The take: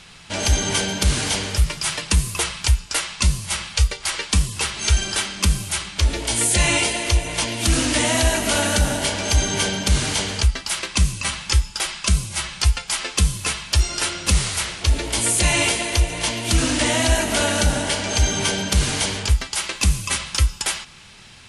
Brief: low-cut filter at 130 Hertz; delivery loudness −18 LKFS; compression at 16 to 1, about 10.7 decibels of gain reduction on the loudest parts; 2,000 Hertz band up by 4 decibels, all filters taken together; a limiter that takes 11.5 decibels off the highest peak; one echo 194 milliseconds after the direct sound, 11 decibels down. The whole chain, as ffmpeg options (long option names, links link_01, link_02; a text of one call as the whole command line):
ffmpeg -i in.wav -af "highpass=130,equalizer=frequency=2000:width_type=o:gain=5,acompressor=threshold=-26dB:ratio=16,alimiter=limit=-23dB:level=0:latency=1,aecho=1:1:194:0.282,volume=13.5dB" out.wav